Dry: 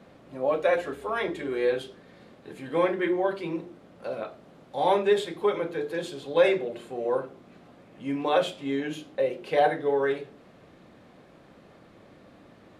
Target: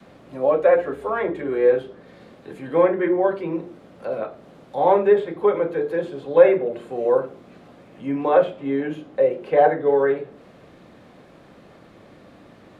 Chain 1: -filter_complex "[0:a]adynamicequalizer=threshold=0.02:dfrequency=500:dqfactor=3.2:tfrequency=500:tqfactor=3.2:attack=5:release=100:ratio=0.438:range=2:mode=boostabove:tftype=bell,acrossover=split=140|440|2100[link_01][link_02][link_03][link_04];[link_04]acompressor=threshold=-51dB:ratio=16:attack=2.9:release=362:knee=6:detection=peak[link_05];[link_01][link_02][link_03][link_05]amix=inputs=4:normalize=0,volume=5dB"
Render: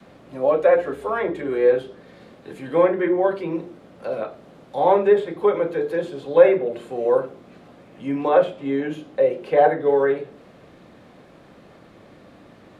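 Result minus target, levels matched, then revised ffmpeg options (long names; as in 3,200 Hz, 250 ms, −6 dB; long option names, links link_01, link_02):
downward compressor: peak gain reduction −6 dB
-filter_complex "[0:a]adynamicequalizer=threshold=0.02:dfrequency=500:dqfactor=3.2:tfrequency=500:tqfactor=3.2:attack=5:release=100:ratio=0.438:range=2:mode=boostabove:tftype=bell,acrossover=split=140|440|2100[link_01][link_02][link_03][link_04];[link_04]acompressor=threshold=-57.5dB:ratio=16:attack=2.9:release=362:knee=6:detection=peak[link_05];[link_01][link_02][link_03][link_05]amix=inputs=4:normalize=0,volume=5dB"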